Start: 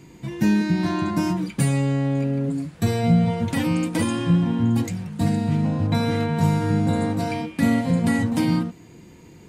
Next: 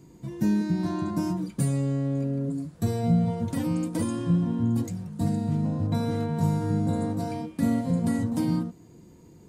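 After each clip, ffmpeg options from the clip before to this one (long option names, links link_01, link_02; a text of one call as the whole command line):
ffmpeg -i in.wav -af "equalizer=frequency=2400:width=0.87:gain=-11.5,bandreject=frequency=820:width=17,volume=-4.5dB" out.wav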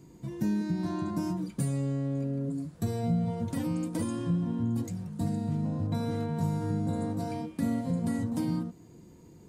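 ffmpeg -i in.wav -af "acompressor=threshold=-30dB:ratio=1.5,volume=-1.5dB" out.wav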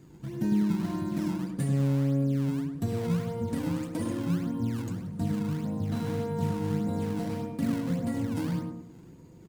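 ffmpeg -i in.wav -filter_complex "[0:a]asplit=2[link_01][link_02];[link_02]acrusher=samples=21:mix=1:aa=0.000001:lfo=1:lforange=33.6:lforate=1.7,volume=-4dB[link_03];[link_01][link_03]amix=inputs=2:normalize=0,asplit=2[link_04][link_05];[link_05]adelay=101,lowpass=frequency=1200:poles=1,volume=-3dB,asplit=2[link_06][link_07];[link_07]adelay=101,lowpass=frequency=1200:poles=1,volume=0.39,asplit=2[link_08][link_09];[link_09]adelay=101,lowpass=frequency=1200:poles=1,volume=0.39,asplit=2[link_10][link_11];[link_11]adelay=101,lowpass=frequency=1200:poles=1,volume=0.39,asplit=2[link_12][link_13];[link_13]adelay=101,lowpass=frequency=1200:poles=1,volume=0.39[link_14];[link_04][link_06][link_08][link_10][link_12][link_14]amix=inputs=6:normalize=0,volume=-4dB" out.wav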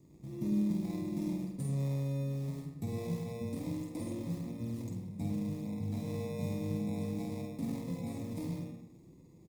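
ffmpeg -i in.wav -filter_complex "[0:a]acrossover=split=550|3700[link_01][link_02][link_03];[link_02]acrusher=samples=29:mix=1:aa=0.000001[link_04];[link_01][link_04][link_03]amix=inputs=3:normalize=0,asplit=2[link_05][link_06];[link_06]adelay=49,volume=-5dB[link_07];[link_05][link_07]amix=inputs=2:normalize=0,volume=-8dB" out.wav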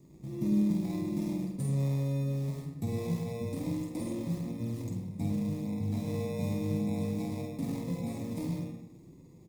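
ffmpeg -i in.wav -af "flanger=delay=4.9:depth=5.4:regen=-74:speed=0.24:shape=triangular,volume=8dB" out.wav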